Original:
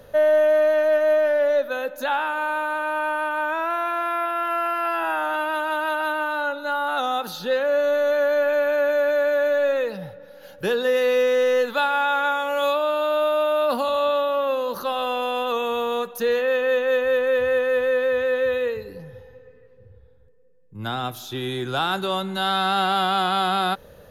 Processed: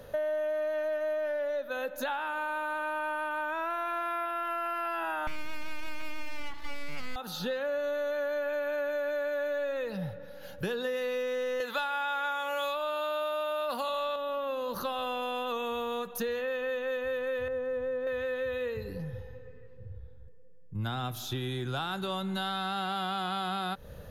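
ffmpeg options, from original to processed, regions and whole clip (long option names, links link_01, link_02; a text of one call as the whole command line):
ffmpeg -i in.wav -filter_complex "[0:a]asettb=1/sr,asplit=3[link_01][link_02][link_03];[link_01]atrim=end=5.274[link_04];[link_02]atrim=start=5.27:end=7.16,asetpts=PTS-STARTPTS,afade=type=in:duration=0.004:curve=qsin,afade=type=out:start_time=1.886:duration=0.004:curve=qsin,bandreject=frequency=2700:width=21,aeval=exprs='abs(val(0))':channel_layout=same[link_05];[link_03]atrim=start=7.156[link_06];[link_04][link_05]acrossfade=duration=0.004:curve1=hsin:curve2=qsin[link_07];[link_07][link_06]acrossfade=duration=0.004:curve1=qsin:curve2=hsin,asettb=1/sr,asplit=3[link_08][link_09][link_10];[link_08]atrim=end=11.604[link_11];[link_09]atrim=start=11.6:end=14.16,asetpts=PTS-STARTPTS,afade=type=in:duration=0.004:curve=qsin,afade=type=out:start_time=2.556:duration=0.004:curve=qsin,highpass=frequency=670:poles=1,acontrast=87[link_12];[link_10]atrim=start=14.156[link_13];[link_11][link_12]acrossfade=duration=0.004:curve1=hsin:curve2=qsin[link_14];[link_14][link_13]acrossfade=duration=0.004:curve1=qsin:curve2=hsin,asettb=1/sr,asplit=3[link_15][link_16][link_17];[link_15]atrim=end=17.484[link_18];[link_16]atrim=start=17.48:end=18.07,asetpts=PTS-STARTPTS,afade=type=in:duration=0.004:curve=qsin,afade=type=out:start_time=0.586:duration=0.004:curve=qsin,lowpass=7000,equalizer=frequency=3300:width=0.4:gain=-14.5[link_19];[link_17]atrim=start=18.066[link_20];[link_18][link_19]acrossfade=duration=0.004:curve1=hsin:curve2=qsin[link_21];[link_21][link_20]acrossfade=duration=0.004:curve1=qsin:curve2=hsin,asubboost=boost=2:cutoff=220,acompressor=threshold=-29dB:ratio=6,volume=-1.5dB" out.wav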